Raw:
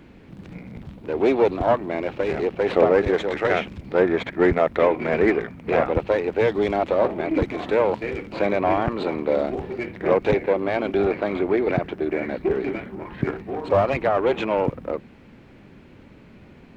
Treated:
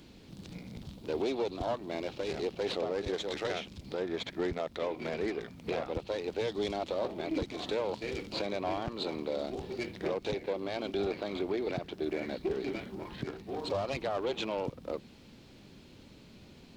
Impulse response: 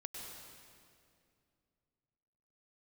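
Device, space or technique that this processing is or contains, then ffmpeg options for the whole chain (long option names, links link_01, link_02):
over-bright horn tweeter: -af "highshelf=frequency=2900:width_type=q:width=1.5:gain=12,alimiter=limit=-16.5dB:level=0:latency=1:release=406,volume=-7dB"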